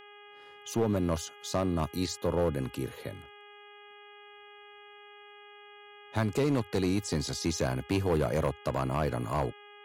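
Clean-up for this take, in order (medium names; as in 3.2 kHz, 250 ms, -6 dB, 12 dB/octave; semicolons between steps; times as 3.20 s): clip repair -21 dBFS; de-hum 411.7 Hz, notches 8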